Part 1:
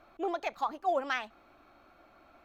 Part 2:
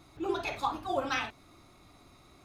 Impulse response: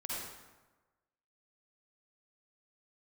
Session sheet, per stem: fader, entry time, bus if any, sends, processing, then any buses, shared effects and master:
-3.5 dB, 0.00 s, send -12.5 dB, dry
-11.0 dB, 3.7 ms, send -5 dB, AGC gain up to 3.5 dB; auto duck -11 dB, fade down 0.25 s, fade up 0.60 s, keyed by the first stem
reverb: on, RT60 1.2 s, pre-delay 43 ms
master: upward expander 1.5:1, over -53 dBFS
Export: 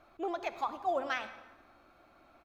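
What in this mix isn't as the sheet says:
stem 2 -11.0 dB -> -21.5 dB; master: missing upward expander 1.5:1, over -53 dBFS

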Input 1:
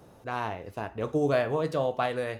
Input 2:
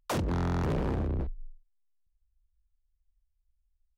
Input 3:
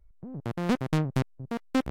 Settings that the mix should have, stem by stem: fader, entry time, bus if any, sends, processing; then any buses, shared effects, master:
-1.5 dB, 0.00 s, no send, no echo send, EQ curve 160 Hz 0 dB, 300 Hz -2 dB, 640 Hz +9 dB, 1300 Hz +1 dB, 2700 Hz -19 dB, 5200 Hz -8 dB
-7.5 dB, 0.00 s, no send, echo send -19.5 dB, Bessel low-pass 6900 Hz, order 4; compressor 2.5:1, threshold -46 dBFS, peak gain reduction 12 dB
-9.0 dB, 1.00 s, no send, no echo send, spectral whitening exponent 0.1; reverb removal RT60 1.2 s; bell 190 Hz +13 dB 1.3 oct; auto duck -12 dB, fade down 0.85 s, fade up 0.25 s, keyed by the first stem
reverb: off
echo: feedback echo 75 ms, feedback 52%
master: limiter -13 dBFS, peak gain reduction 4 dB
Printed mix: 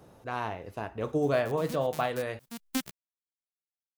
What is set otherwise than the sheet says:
stem 1: missing EQ curve 160 Hz 0 dB, 300 Hz -2 dB, 640 Hz +9 dB, 1300 Hz +1 dB, 2700 Hz -19 dB, 5200 Hz -8 dB; stem 2: muted

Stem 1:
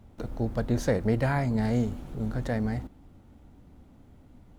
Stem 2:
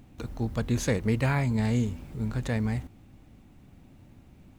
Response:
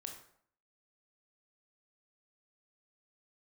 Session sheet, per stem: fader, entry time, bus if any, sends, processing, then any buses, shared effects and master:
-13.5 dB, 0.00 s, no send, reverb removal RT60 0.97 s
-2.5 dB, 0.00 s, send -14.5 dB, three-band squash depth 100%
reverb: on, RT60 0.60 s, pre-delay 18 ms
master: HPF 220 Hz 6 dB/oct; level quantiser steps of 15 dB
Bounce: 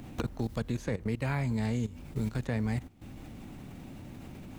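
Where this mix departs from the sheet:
stem 1 -13.5 dB -> -24.0 dB; master: missing HPF 220 Hz 6 dB/oct

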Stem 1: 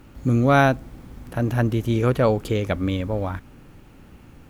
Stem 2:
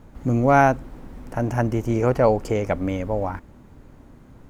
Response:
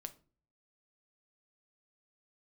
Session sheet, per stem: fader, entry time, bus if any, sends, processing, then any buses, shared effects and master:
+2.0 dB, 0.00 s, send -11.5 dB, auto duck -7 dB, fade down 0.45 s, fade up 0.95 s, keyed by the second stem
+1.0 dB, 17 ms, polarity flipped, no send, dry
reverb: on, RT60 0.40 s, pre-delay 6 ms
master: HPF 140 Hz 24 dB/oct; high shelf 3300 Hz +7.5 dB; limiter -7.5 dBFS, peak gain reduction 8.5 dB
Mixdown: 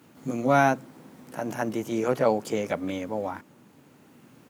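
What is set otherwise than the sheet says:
stem 1 +2.0 dB -> -9.0 dB; stem 2 +1.0 dB -> -5.5 dB

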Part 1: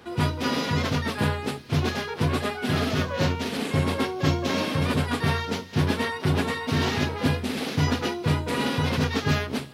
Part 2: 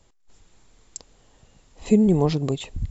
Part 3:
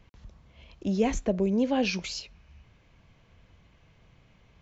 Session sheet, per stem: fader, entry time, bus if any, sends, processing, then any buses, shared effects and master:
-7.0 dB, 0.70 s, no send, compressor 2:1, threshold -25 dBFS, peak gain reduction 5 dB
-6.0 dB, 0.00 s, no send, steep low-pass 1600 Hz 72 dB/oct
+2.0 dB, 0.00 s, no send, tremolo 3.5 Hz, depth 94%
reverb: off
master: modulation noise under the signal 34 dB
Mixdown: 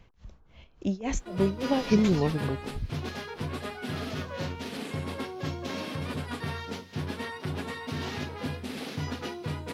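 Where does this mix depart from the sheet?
stem 1: entry 0.70 s -> 1.20 s; master: missing modulation noise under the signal 34 dB

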